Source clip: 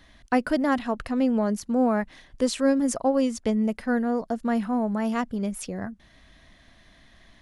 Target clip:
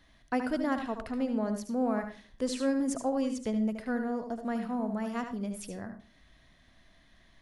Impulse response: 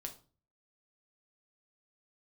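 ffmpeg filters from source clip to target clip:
-filter_complex "[0:a]asplit=2[a][b];[1:a]atrim=start_sample=2205,adelay=74[c];[b][c]afir=irnorm=-1:irlink=0,volume=-4dB[d];[a][d]amix=inputs=2:normalize=0,volume=-8dB"

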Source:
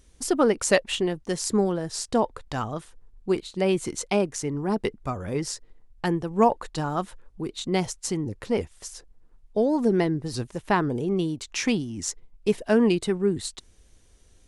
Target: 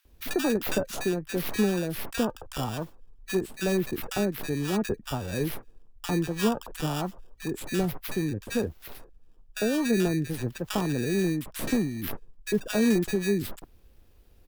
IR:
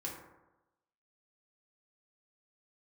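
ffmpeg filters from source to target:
-filter_complex "[0:a]acrossover=split=280|3000[a][b][c];[b]acompressor=threshold=-26dB:ratio=6[d];[a][d][c]amix=inputs=3:normalize=0,acrossover=split=160|2800[e][f][g];[f]acrusher=samples=21:mix=1:aa=0.000001[h];[g]aeval=exprs='abs(val(0))':c=same[i];[e][h][i]amix=inputs=3:normalize=0,acrossover=split=1300[j][k];[j]adelay=50[l];[l][k]amix=inputs=2:normalize=0"

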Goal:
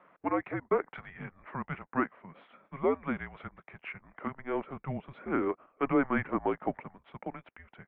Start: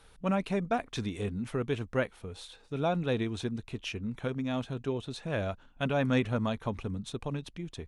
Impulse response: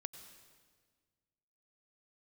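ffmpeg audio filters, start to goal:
-filter_complex "[0:a]asettb=1/sr,asplit=3[a][b][c];[a]atrim=end=4.394[d];[b]atrim=start=4.39:end=6.84,asetpts=PTS-STARTPTS,afade=t=in:d=0.004:c=qsin,afade=t=out:st=2.446:d=0.004:c=qsin,lowshelf=f=430:g=9.5[e];[c]atrim=start=6.836[f];[d][e]acrossfade=d=0.004:c1=hsin:c2=qsin[g];[g][f]acrossfade=d=0.004:c1=qsin:c2=hsin,highpass=f=580:t=q:w=0.5412,highpass=f=580:t=q:w=1.307,lowpass=f=2.3k:t=q:w=0.5176,lowpass=f=2.3k:t=q:w=0.7071,lowpass=f=2.3k:t=q:w=1.932,afreqshift=-270,volume=4.5dB"

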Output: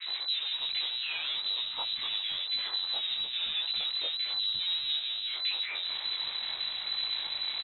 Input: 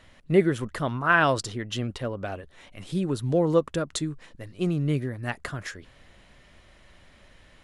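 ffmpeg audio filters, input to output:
-filter_complex "[0:a]aeval=exprs='val(0)+0.5*0.0376*sgn(val(0))':c=same,adynamicequalizer=threshold=0.0178:dfrequency=530:dqfactor=0.7:tfrequency=530:tqfactor=0.7:attack=5:release=100:ratio=0.375:range=2.5:mode=boostabove:tftype=bell,acrossover=split=540[a][b];[a]acontrast=29[c];[c][b]amix=inputs=2:normalize=0,alimiter=limit=-11dB:level=0:latency=1:release=65,asoftclip=type=hard:threshold=-29dB,flanger=delay=17.5:depth=5.3:speed=0.86,lowpass=f=3.4k:t=q:w=0.5098,lowpass=f=3.4k:t=q:w=0.6013,lowpass=f=3.4k:t=q:w=0.9,lowpass=f=3.4k:t=q:w=2.563,afreqshift=-4000,acrossover=split=270|1600[d][e][f];[e]adelay=60[g];[d]adelay=590[h];[h][g][f]amix=inputs=3:normalize=0"

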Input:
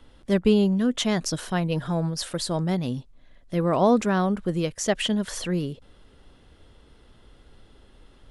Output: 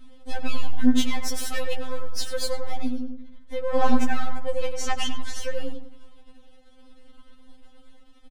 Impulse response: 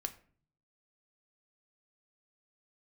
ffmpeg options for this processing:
-filter_complex "[0:a]aeval=exprs='if(lt(val(0),0),0.251*val(0),val(0))':c=same,asettb=1/sr,asplit=3[a][b][c];[a]atrim=end=4.764[d];[b]atrim=start=4.76:end=5.41,asetpts=PTS-STARTPTS,afade=t=in:d=0.004:c=qsin,afade=t=out:st=0.646:d=0.004:c=qsin,lowpass=8.4k[e];[c]atrim=start=5.406[f];[d][e]acrossfade=d=0.004:c1=hsin:c2=qsin[g];[g][f]acrossfade=d=0.004:c1=qsin:c2=hsin,asplit=2[h][i];[i]adelay=97,lowpass=f=1.5k:p=1,volume=-5dB,asplit=2[j][k];[k]adelay=97,lowpass=f=1.5k:p=1,volume=0.42,asplit=2[l][m];[m]adelay=97,lowpass=f=1.5k:p=1,volume=0.42,asplit=2[n][o];[o]adelay=97,lowpass=f=1.5k:p=1,volume=0.42,asplit=2[p][q];[q]adelay=97,lowpass=f=1.5k:p=1,volume=0.42[r];[h][j][l][n][p][r]amix=inputs=6:normalize=0,volume=11dB,asoftclip=hard,volume=-11dB,asettb=1/sr,asplit=3[s][t][u];[s]atrim=end=1.344[v];[t]atrim=start=1.34:end=1.74,asetpts=PTS-STARTPTS,afade=t=in:d=0.004:c=qsin,afade=t=out:st=0.396:d=0.004:c=qsin,highshelf=f=4.3k:g=10.5[w];[u]atrim=start=1.736[x];[v][w]acrossfade=d=0.004:c1=hsin:c2=qsin[y];[y][x]acrossfade=d=0.004:c1=qsin:c2=hsin,asettb=1/sr,asplit=3[z][aa][ab];[z]atrim=end=2.884[ac];[aa]atrim=start=2.88:end=3.75,asetpts=PTS-STARTPTS,afade=t=in:d=0.004:c=qsin,afade=t=out:st=0.866:d=0.004:c=qsin,acompressor=threshold=-29dB:ratio=6[ad];[ab]atrim=start=3.746[ae];[ac][ad]acrossfade=d=0.004:c1=hsin:c2=qsin[af];[af][ae]acrossfade=d=0.004:c1=qsin:c2=hsin,afftfilt=real='re*3.46*eq(mod(b,12),0)':imag='im*3.46*eq(mod(b,12),0)':win_size=2048:overlap=0.75,volume=4dB"

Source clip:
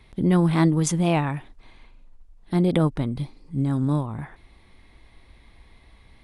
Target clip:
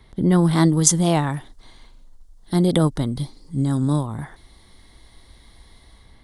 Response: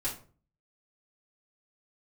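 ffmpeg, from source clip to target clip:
-filter_complex "[0:a]equalizer=f=2.5k:t=o:w=0.24:g=-14.5,acrossover=split=540|3900[a][b][c];[c]dynaudnorm=f=180:g=5:m=11dB[d];[a][b][d]amix=inputs=3:normalize=0,volume=2.5dB"

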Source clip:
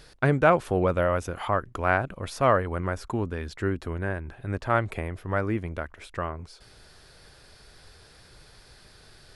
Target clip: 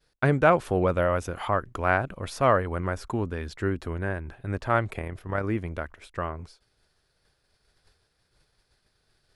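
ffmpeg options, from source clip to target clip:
-filter_complex "[0:a]agate=range=-33dB:threshold=-40dB:ratio=3:detection=peak,asettb=1/sr,asplit=3[a][b][c];[a]atrim=end=4.874[d];[b]atrim=start=4.87:end=5.44,asetpts=PTS-STARTPTS,afade=t=in:d=0.004:c=qsin,afade=t=out:st=0.566:d=0.004:c=qsin,tremolo=f=35:d=0.462[e];[c]atrim=start=5.436[f];[d][e]acrossfade=d=0.004:c1=hsin:c2=qsin[g];[g][f]acrossfade=d=0.004:c1=qsin:c2=hsin"

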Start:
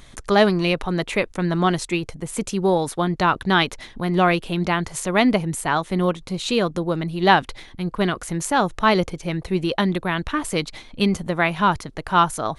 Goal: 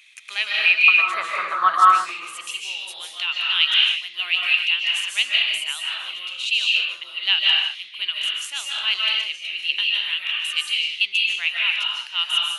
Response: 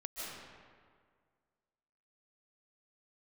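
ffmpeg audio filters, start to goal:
-filter_complex "[0:a]asetnsamples=n=441:p=0,asendcmd='0.88 highpass f 1200;2.25 highpass f 2800',highpass=f=2.5k:t=q:w=11[a];[1:a]atrim=start_sample=2205,afade=t=out:st=0.41:d=0.01,atrim=end_sample=18522[b];[a][b]afir=irnorm=-1:irlink=0,volume=-2dB"

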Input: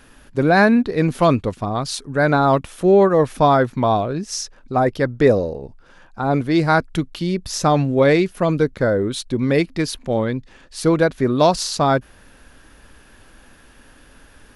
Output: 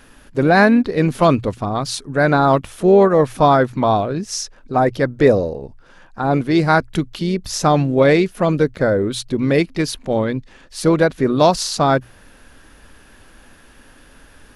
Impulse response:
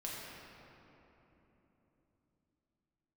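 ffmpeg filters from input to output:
-filter_complex "[0:a]bandreject=f=60:t=h:w=6,bandreject=f=120:t=h:w=6,asplit=2[a][b];[b]asetrate=52444,aresample=44100,atempo=0.840896,volume=-18dB[c];[a][c]amix=inputs=2:normalize=0,volume=1.5dB"

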